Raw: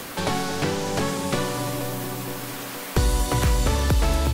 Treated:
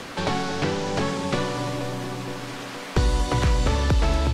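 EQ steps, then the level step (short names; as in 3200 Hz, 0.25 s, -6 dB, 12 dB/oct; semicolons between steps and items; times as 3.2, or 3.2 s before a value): LPF 5700 Hz 12 dB/oct; 0.0 dB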